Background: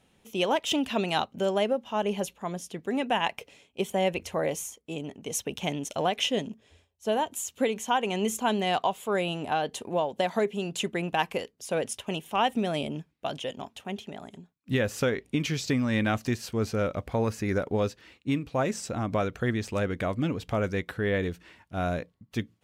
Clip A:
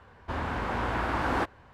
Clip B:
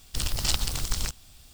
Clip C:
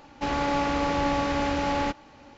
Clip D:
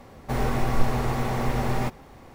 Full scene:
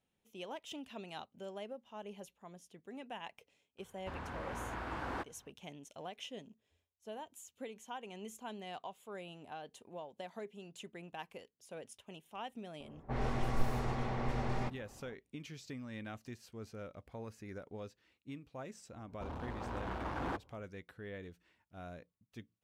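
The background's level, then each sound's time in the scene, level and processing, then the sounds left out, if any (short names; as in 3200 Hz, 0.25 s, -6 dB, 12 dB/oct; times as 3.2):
background -19.5 dB
3.78 add A -12.5 dB
12.8 add D -10.5 dB + low-pass opened by the level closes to 1000 Hz, open at -16 dBFS
18.92 add A -10 dB + Wiener smoothing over 25 samples
not used: B, C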